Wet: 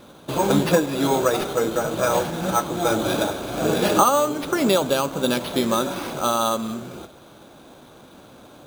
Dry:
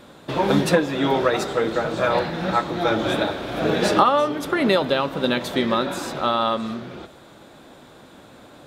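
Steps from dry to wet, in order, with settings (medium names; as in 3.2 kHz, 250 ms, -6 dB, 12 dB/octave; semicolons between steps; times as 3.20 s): peaking EQ 1.9 kHz -12 dB 0.21 oct; careless resampling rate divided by 6×, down none, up hold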